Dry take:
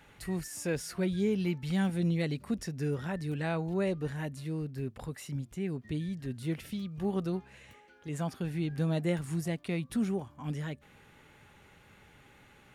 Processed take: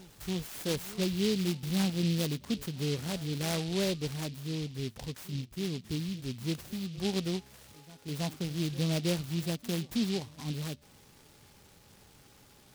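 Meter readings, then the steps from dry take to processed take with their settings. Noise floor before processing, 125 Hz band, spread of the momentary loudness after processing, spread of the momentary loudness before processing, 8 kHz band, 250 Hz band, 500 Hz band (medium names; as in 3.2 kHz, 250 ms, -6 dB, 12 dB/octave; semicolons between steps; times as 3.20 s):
-59 dBFS, 0.0 dB, 9 LU, 9 LU, +5.0 dB, 0.0 dB, -1.0 dB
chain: on a send: reverse echo 324 ms -19.5 dB; on the sum: delay time shaken by noise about 3.5 kHz, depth 0.16 ms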